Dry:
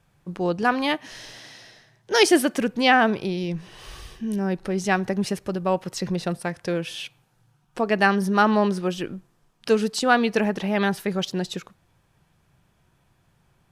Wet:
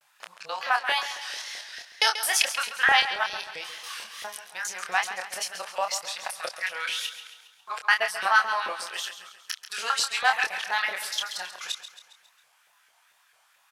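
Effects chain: time reversed locally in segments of 202 ms; amplifier tone stack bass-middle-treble 10-0-10; in parallel at +3 dB: compression, threshold -42 dBFS, peak gain reduction 21 dB; on the sum: LFO high-pass saw up 4.5 Hz 520–1800 Hz; wow and flutter 120 cents; doubling 27 ms -5.5 dB; on a send: feedback delay 136 ms, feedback 51%, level -11.5 dB

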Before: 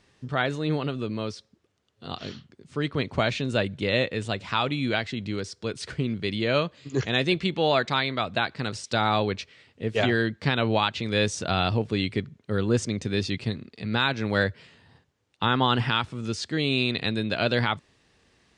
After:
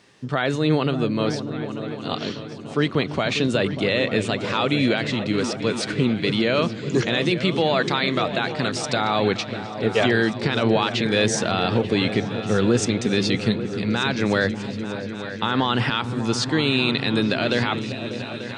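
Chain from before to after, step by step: high-pass 140 Hz 12 dB/octave; peak limiter -17.5 dBFS, peak gain reduction 9 dB; delay with an opening low-pass 296 ms, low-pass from 200 Hz, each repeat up 2 oct, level -6 dB; trim +8 dB

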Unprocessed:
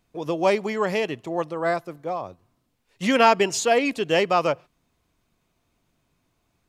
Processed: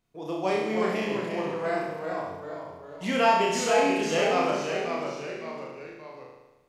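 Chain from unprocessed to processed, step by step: flutter echo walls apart 5.5 m, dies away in 0.94 s; ever faster or slower copies 289 ms, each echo -1 st, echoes 3, each echo -6 dB; trim -9 dB

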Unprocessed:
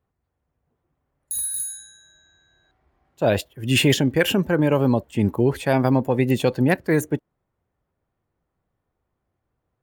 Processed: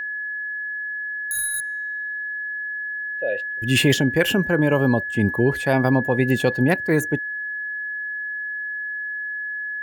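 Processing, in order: 1.60–3.62 s: vowel filter e; whistle 1.7 kHz -26 dBFS

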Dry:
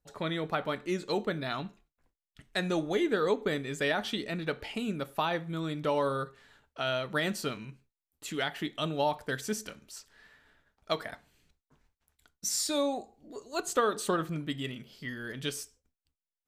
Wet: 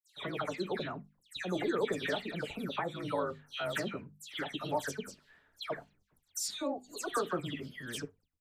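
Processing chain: granular stretch 0.51×, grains 35 ms; hum notches 50/100/150/200/250 Hz; phase dispersion lows, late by 148 ms, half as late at 2.7 kHz; trim -2.5 dB

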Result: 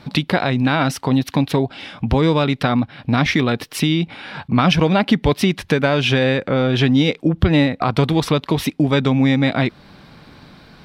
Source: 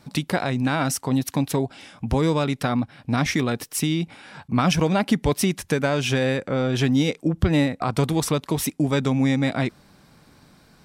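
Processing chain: resonant high shelf 5.3 kHz -11 dB, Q 1.5; in parallel at +1 dB: compression, threshold -31 dBFS, peak gain reduction 16.5 dB; on the sum: trim +3 dB

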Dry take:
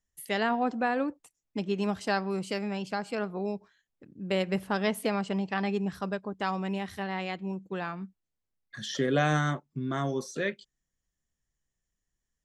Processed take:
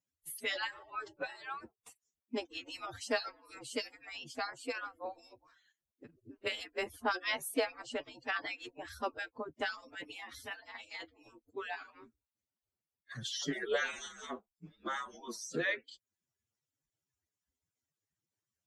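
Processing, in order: harmonic-percussive separation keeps percussive; time stretch by phase-locked vocoder 1.5×

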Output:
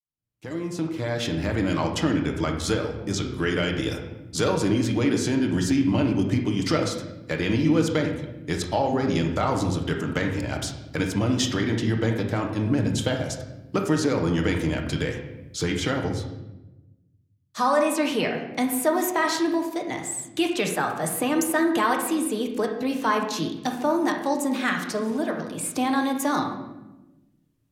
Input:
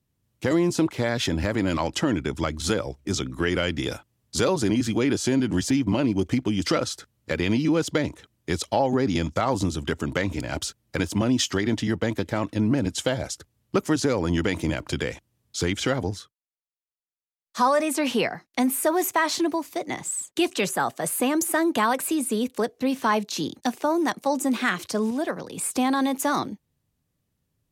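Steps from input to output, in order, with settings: fade-in on the opening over 1.70 s; reverberation RT60 1.0 s, pre-delay 7 ms, DRR 2 dB; trim -2 dB

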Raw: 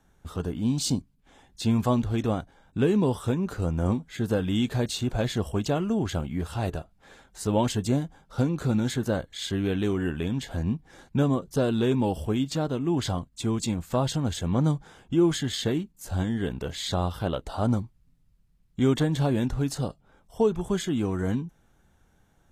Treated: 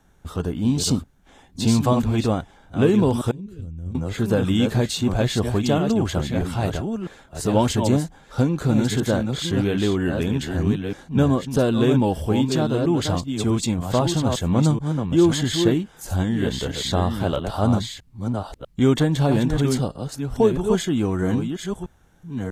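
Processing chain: chunks repeated in reverse 643 ms, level -6 dB; 3.31–3.95 s: amplifier tone stack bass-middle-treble 10-0-1; trim +5 dB

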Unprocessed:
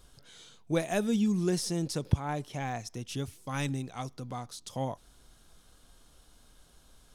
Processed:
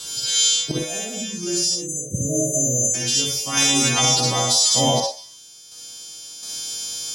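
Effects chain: partials quantised in pitch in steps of 2 st; high-pass 130 Hz 12 dB/octave; high-order bell 4.6 kHz +10 dB; compression 6:1, threshold -28 dBFS, peak gain reduction 12.5 dB; repeats whose band climbs or falls 152 ms, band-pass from 680 Hz, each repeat 1.4 oct, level -4 dB; random-step tremolo 1.4 Hz, depth 85%; spectral selection erased 1.75–2.94 s, 650–5900 Hz; reverberation, pre-delay 48 ms, DRR -1 dB; loudness maximiser +22.5 dB; trim -6.5 dB

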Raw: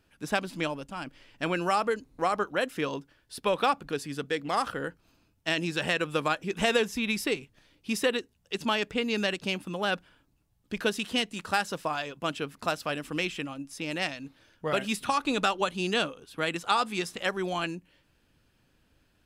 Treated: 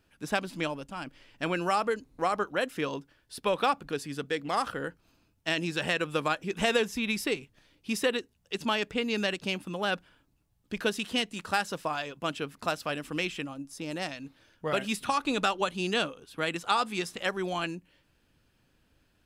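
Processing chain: 13.44–14.11 s: peaking EQ 2.4 kHz -7 dB 1.2 oct; trim -1 dB

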